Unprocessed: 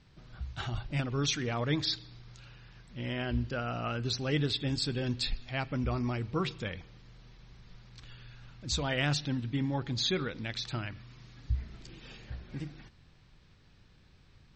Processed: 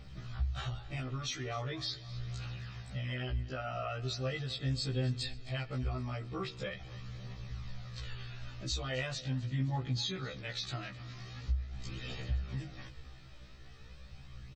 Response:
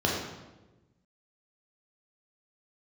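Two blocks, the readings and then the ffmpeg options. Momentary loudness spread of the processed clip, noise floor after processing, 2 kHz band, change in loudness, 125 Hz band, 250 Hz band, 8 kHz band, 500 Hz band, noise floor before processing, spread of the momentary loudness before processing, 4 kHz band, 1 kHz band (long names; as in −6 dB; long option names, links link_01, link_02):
15 LU, −51 dBFS, −5.0 dB, −5.0 dB, −1.5 dB, −7.5 dB, −5.5 dB, −5.0 dB, −61 dBFS, 21 LU, −5.0 dB, −4.0 dB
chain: -af "aecho=1:1:1.6:0.36,acompressor=threshold=-44dB:ratio=4,aphaser=in_gain=1:out_gain=1:delay=3.4:decay=0.37:speed=0.41:type=triangular,aecho=1:1:260|520|780|1040|1300:0.112|0.0651|0.0377|0.0219|0.0127,afftfilt=real='re*1.73*eq(mod(b,3),0)':imag='im*1.73*eq(mod(b,3),0)':win_size=2048:overlap=0.75,volume=8.5dB"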